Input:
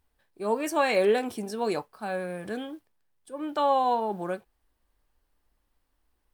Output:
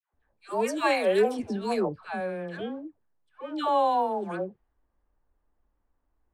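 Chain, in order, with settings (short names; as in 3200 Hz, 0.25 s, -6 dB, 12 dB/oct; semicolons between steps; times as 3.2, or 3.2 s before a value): low-pass opened by the level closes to 1300 Hz, open at -23 dBFS; 1.26–2.07 low shelf 170 Hz +10 dB; dispersion lows, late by 0.139 s, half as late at 870 Hz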